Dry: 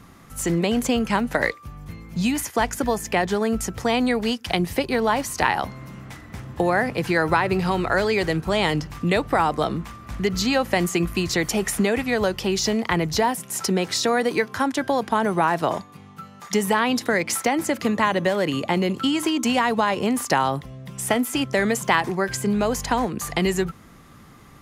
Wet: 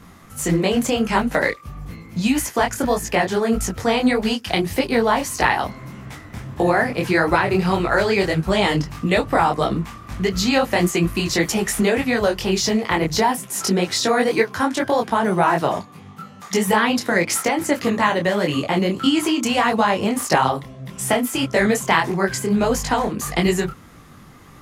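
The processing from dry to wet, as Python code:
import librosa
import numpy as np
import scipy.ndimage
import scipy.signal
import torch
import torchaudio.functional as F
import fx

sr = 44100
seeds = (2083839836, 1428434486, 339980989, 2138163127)

y = fx.detune_double(x, sr, cents=57)
y = y * 10.0 ** (6.5 / 20.0)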